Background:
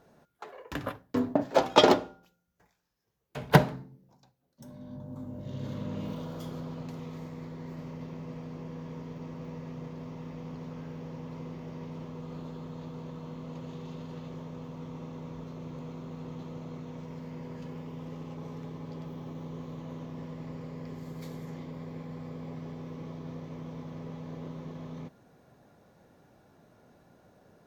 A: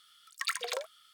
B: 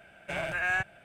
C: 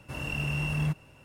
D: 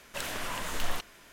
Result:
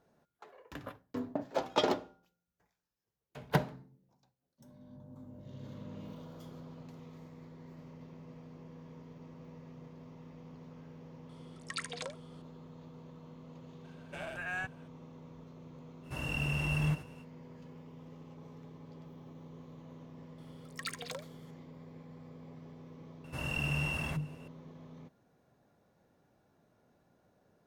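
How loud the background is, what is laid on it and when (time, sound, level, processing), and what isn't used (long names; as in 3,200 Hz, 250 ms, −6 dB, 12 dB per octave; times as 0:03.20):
background −10 dB
0:11.29: mix in A −6.5 dB + downsampling to 22,050 Hz
0:13.84: mix in B −8.5 dB + parametric band 2,100 Hz −8.5 dB 0.22 octaves
0:16.02: mix in C −2.5 dB, fades 0.05 s + delay that plays each chunk backwards 551 ms, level −8.5 dB
0:20.38: mix in A −7.5 dB
0:23.24: mix in C −1.5 dB + mains-hum notches 50/100/150/200/250/300/350/400/450 Hz
not used: D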